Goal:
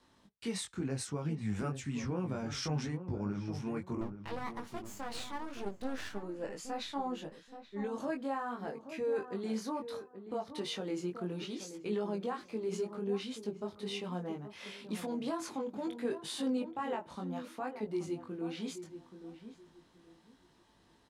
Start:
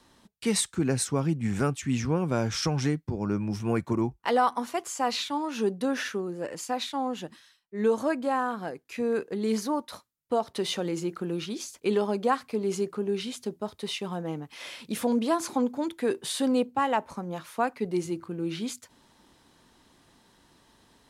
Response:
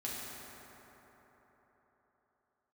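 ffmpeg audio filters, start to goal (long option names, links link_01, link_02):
-filter_complex "[0:a]highshelf=frequency=9200:gain=-10,alimiter=limit=-21.5dB:level=0:latency=1:release=76,flanger=delay=19:depth=3.3:speed=0.67,asettb=1/sr,asplit=3[link_01][link_02][link_03];[link_01]atrim=end=4.014[link_04];[link_02]atrim=start=4.01:end=6.23,asetpts=PTS-STARTPTS,afade=type=in:duration=0.004:curve=qsin,afade=type=out:start_time=2.216:duration=0.004:curve=qsin,aeval=exprs='max(val(0),0)':channel_layout=same[link_05];[link_03]atrim=start=6.226[link_06];[link_04][link_05]acrossfade=duration=0.004:curve1=hsin:curve2=qsin[link_07];[link_07][link_06]acrossfade=duration=0.004:curve1=qsin:curve2=hsin,asplit=2[link_08][link_09];[link_09]adelay=828,lowpass=frequency=1200:poles=1,volume=-10dB,asplit=2[link_10][link_11];[link_11]adelay=828,lowpass=frequency=1200:poles=1,volume=0.25,asplit=2[link_12][link_13];[link_13]adelay=828,lowpass=frequency=1200:poles=1,volume=0.25[link_14];[link_08][link_10][link_12][link_14]amix=inputs=4:normalize=0,volume=-3.5dB"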